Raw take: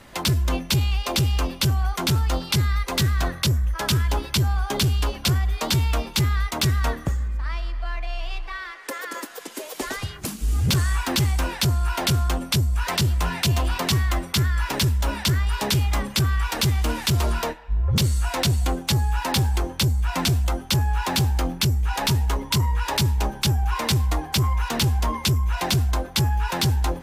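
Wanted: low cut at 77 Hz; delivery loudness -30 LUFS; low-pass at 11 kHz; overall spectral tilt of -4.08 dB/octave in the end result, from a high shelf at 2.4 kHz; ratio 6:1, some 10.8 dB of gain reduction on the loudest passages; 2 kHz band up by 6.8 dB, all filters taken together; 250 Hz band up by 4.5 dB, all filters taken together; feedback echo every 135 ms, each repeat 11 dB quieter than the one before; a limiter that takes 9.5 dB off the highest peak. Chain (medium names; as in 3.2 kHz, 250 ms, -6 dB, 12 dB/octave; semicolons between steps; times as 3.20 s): high-pass 77 Hz; low-pass 11 kHz; peaking EQ 250 Hz +6.5 dB; peaking EQ 2 kHz +6 dB; treble shelf 2.4 kHz +5 dB; compression 6:1, threshold -26 dBFS; peak limiter -21 dBFS; feedback delay 135 ms, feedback 28%, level -11 dB; trim +0.5 dB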